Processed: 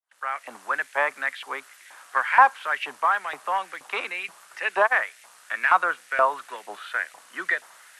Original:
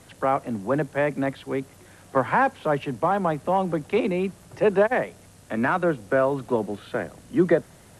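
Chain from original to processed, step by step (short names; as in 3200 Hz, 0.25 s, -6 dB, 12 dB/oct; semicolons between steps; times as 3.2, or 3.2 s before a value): opening faded in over 0.56 s; LFO high-pass saw up 2.1 Hz 920–2200 Hz; gate with hold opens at -47 dBFS; gain +2.5 dB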